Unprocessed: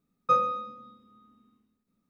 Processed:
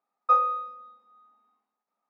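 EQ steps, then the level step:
high-pass with resonance 790 Hz, resonance Q 4.9
low-pass filter 4,300 Hz 12 dB per octave
parametric band 3,300 Hz −7.5 dB 0.79 octaves
−1.0 dB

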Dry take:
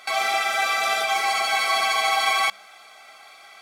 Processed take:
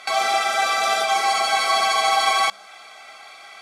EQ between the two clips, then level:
high-pass filter 42 Hz 6 dB per octave
low-pass filter 10,000 Hz 12 dB per octave
dynamic equaliser 2,300 Hz, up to −6 dB, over −37 dBFS, Q 1.3
+4.5 dB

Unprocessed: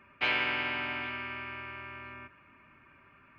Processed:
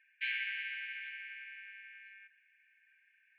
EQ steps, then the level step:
moving average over 8 samples
linear-phase brick-wall high-pass 1,500 Hz
−4.0 dB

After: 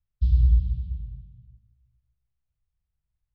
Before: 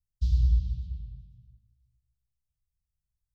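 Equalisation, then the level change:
high-frequency loss of the air 310 metres
+4.5 dB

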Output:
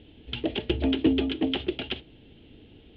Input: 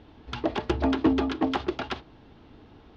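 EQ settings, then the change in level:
drawn EQ curve 490 Hz 0 dB, 1,100 Hz −17 dB, 3,100 Hz +9 dB, 5,700 Hz −18 dB
0.0 dB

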